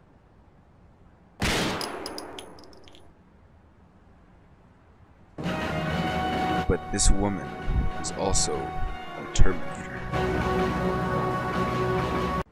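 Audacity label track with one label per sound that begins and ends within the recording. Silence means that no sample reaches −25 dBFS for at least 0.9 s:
1.420000	2.390000	sound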